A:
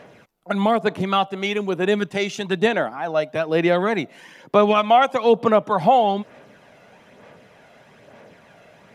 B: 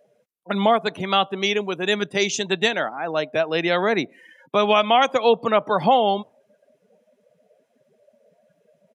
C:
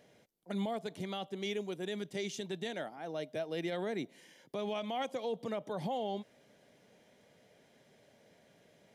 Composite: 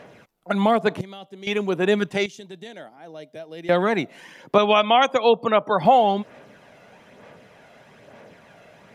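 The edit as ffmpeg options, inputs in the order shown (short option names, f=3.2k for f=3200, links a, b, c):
-filter_complex "[2:a]asplit=2[a][b];[0:a]asplit=4[c][d][e][f];[c]atrim=end=1.012[g];[a]atrim=start=1.008:end=1.472[h];[d]atrim=start=1.468:end=2.262[i];[b]atrim=start=2.258:end=3.692[j];[e]atrim=start=3.688:end=4.582[k];[1:a]atrim=start=4.578:end=5.852[l];[f]atrim=start=5.848[m];[g][h]acrossfade=d=0.004:c1=hsin:c2=hsin[n];[n][i]acrossfade=d=0.004:c1=hsin:c2=hsin[o];[o][j]acrossfade=d=0.004:c1=hsin:c2=hsin[p];[p][k]acrossfade=d=0.004:c1=hsin:c2=hsin[q];[q][l]acrossfade=d=0.004:c1=hsin:c2=hsin[r];[r][m]acrossfade=d=0.004:c1=hsin:c2=hsin"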